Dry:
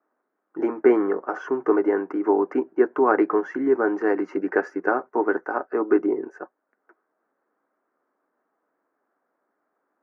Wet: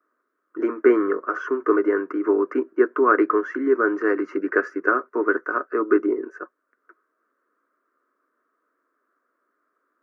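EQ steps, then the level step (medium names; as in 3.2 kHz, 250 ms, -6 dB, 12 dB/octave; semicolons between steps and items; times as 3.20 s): peaking EQ 1.2 kHz +14 dB 1 oct; static phaser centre 340 Hz, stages 4; 0.0 dB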